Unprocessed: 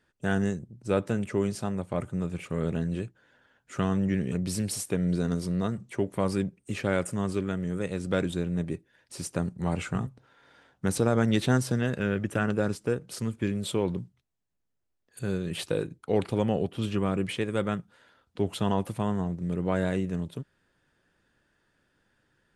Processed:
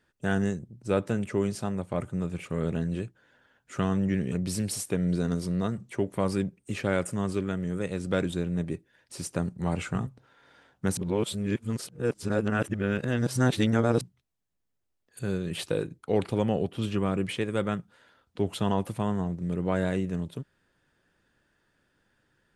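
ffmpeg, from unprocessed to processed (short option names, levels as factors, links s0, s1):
-filter_complex "[0:a]asplit=3[s0][s1][s2];[s0]atrim=end=10.972[s3];[s1]atrim=start=10.968:end=14.012,asetpts=PTS-STARTPTS,areverse[s4];[s2]atrim=start=14.008[s5];[s3][s4]acrossfade=d=0.004:c1=hsin:c2=hsin[s6];[s6][s5]acrossfade=d=0.004:c1=hsin:c2=hsin"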